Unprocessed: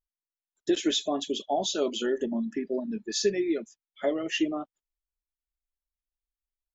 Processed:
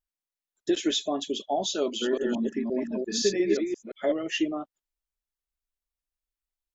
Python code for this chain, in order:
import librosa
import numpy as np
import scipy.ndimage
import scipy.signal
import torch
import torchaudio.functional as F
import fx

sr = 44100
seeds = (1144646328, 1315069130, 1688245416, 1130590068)

y = fx.reverse_delay(x, sr, ms=174, wet_db=-2.0, at=(1.83, 4.12))